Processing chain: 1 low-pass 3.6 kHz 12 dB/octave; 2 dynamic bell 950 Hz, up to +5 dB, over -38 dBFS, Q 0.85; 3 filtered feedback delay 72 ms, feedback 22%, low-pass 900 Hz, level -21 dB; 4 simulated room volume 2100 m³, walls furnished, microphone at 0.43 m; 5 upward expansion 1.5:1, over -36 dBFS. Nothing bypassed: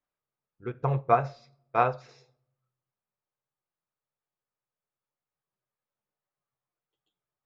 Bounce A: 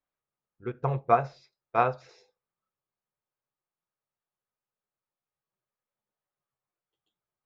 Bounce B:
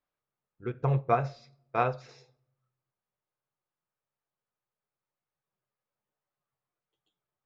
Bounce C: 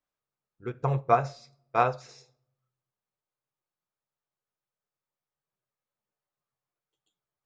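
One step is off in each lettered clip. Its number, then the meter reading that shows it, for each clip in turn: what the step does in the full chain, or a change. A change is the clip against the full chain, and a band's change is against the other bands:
4, 125 Hz band -2.0 dB; 2, momentary loudness spread change -3 LU; 1, 4 kHz band +4.5 dB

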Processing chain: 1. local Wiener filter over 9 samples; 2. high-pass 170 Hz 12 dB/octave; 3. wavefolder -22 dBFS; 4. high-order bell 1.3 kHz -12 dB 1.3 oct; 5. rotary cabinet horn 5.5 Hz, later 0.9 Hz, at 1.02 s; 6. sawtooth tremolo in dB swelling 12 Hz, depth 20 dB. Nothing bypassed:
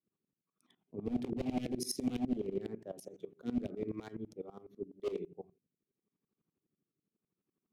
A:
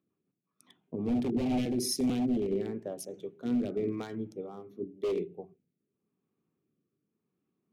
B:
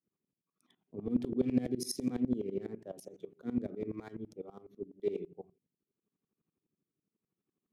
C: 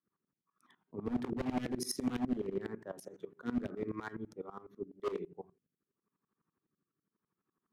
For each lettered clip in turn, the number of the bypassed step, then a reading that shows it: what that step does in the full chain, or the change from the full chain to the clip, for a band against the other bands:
6, crest factor change -6.0 dB; 3, distortion -6 dB; 4, 2 kHz band +7.5 dB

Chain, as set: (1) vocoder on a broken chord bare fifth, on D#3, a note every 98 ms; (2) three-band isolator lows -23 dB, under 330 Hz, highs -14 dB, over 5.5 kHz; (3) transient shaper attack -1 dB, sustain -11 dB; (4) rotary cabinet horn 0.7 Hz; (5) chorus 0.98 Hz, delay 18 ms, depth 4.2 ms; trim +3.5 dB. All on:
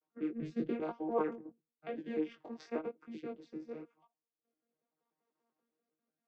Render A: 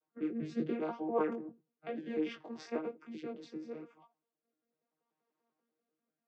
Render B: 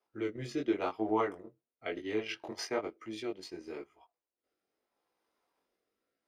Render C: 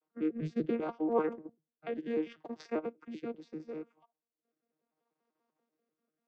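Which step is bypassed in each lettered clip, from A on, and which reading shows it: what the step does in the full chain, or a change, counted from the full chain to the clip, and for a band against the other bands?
3, 4 kHz band +4.5 dB; 1, 4 kHz band +12.5 dB; 5, 125 Hz band +3.0 dB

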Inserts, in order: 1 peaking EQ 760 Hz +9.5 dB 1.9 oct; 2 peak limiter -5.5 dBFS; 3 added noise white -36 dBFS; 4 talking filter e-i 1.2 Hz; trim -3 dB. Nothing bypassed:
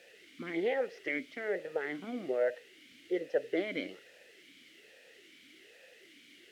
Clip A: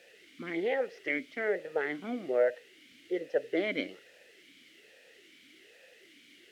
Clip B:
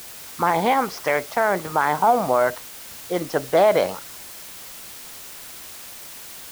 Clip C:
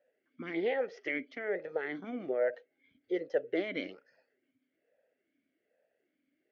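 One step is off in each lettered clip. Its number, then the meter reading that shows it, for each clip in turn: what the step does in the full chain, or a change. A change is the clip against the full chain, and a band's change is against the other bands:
2, mean gain reduction 1.5 dB; 4, 1 kHz band +15.0 dB; 3, 4 kHz band -2.0 dB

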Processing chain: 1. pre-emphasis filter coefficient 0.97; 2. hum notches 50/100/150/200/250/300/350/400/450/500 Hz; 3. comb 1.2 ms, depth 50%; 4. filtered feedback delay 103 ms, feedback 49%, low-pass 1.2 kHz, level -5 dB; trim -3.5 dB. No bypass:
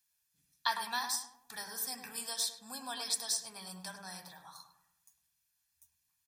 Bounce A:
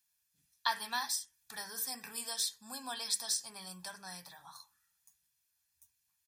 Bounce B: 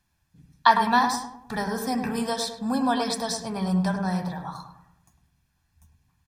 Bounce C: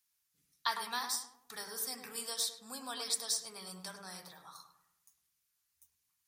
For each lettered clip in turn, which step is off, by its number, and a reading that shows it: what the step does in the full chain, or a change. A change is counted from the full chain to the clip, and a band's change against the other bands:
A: 4, echo-to-direct -8.0 dB to none; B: 1, 8 kHz band -19.5 dB; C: 3, 500 Hz band +3.5 dB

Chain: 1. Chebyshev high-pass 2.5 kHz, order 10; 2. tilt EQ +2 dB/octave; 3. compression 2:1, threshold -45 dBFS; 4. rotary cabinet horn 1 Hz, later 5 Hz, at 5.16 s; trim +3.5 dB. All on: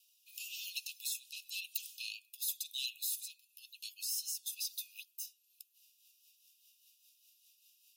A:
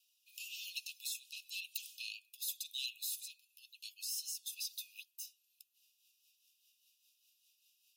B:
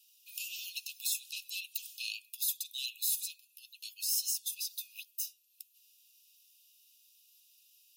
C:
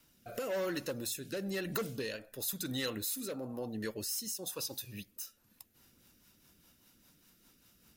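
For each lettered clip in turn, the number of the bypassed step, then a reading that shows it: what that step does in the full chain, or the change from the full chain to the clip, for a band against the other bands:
2, momentary loudness spread change -5 LU; 4, crest factor change -3.5 dB; 1, crest factor change -4.5 dB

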